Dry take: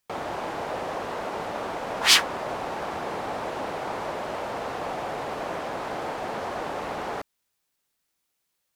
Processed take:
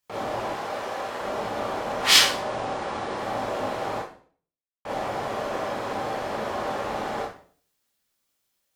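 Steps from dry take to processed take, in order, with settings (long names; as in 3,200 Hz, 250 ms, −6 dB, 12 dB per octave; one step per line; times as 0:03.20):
0:00.51–0:01.21: low-shelf EQ 350 Hz −9.5 dB
0:02.26–0:03.17: elliptic low-pass filter 9,700 Hz, stop band 50 dB
0:03.98–0:04.85: silence
convolution reverb RT60 0.50 s, pre-delay 21 ms, DRR −5 dB
level −4.5 dB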